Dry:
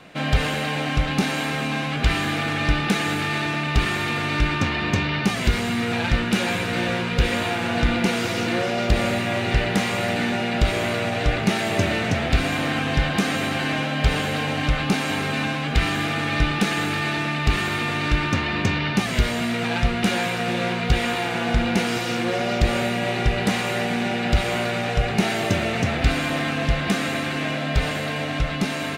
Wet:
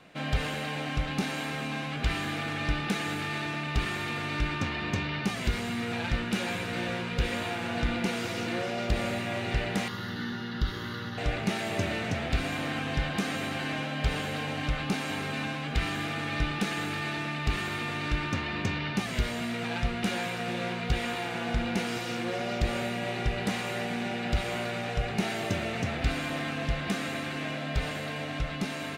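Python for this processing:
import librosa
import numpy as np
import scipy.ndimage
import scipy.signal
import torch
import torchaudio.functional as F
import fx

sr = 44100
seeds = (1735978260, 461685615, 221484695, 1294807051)

y = fx.fixed_phaser(x, sr, hz=2400.0, stages=6, at=(9.88, 11.18))
y = y * librosa.db_to_amplitude(-8.5)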